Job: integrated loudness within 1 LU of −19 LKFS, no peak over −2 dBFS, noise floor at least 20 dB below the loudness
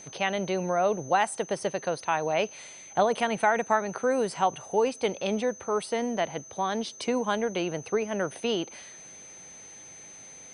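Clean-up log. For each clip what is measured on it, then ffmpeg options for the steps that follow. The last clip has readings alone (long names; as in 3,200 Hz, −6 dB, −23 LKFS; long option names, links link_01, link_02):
interfering tone 6,200 Hz; level of the tone −45 dBFS; integrated loudness −28.0 LKFS; sample peak −9.5 dBFS; target loudness −19.0 LKFS
→ -af "bandreject=frequency=6200:width=30"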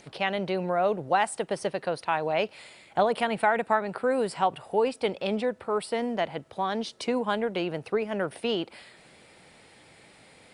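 interfering tone none found; integrated loudness −28.0 LKFS; sample peak −9.5 dBFS; target loudness −19.0 LKFS
→ -af "volume=9dB,alimiter=limit=-2dB:level=0:latency=1"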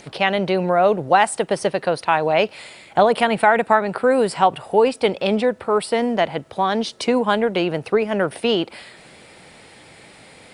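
integrated loudness −19.5 LKFS; sample peak −2.0 dBFS; background noise floor −46 dBFS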